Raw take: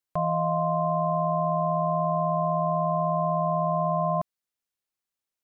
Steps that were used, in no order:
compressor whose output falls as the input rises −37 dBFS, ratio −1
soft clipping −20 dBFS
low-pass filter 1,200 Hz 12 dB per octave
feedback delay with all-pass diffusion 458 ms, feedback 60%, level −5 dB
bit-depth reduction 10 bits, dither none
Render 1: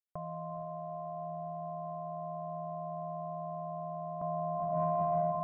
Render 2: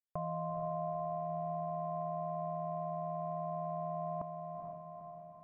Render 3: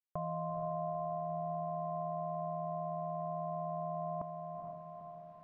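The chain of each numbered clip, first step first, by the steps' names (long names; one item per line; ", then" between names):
feedback delay with all-pass diffusion, then compressor whose output falls as the input rises, then soft clipping, then bit-depth reduction, then low-pass filter
compressor whose output falls as the input rises, then bit-depth reduction, then low-pass filter, then soft clipping, then feedback delay with all-pass diffusion
compressor whose output falls as the input rises, then soft clipping, then feedback delay with all-pass diffusion, then bit-depth reduction, then low-pass filter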